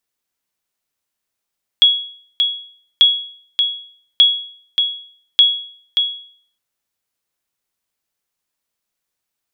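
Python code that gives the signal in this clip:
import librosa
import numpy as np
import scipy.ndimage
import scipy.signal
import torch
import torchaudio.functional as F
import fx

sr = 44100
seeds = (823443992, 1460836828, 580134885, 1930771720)

y = fx.sonar_ping(sr, hz=3340.0, decay_s=0.54, every_s=1.19, pings=4, echo_s=0.58, echo_db=-6.0, level_db=-3.0)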